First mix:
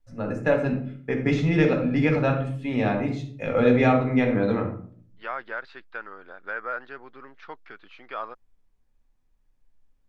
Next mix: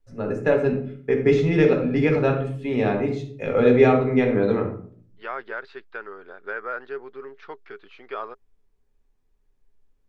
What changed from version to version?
master: add parametric band 410 Hz +14.5 dB 0.2 octaves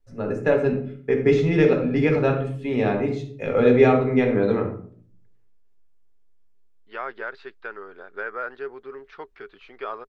second voice: entry +1.70 s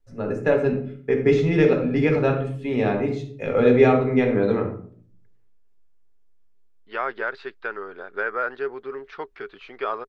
second voice +5.0 dB

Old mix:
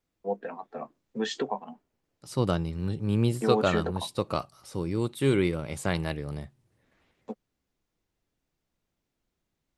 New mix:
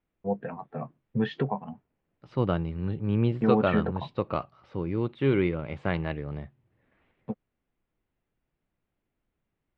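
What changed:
first voice: remove high-pass filter 250 Hz 24 dB per octave
master: add low-pass filter 2,900 Hz 24 dB per octave

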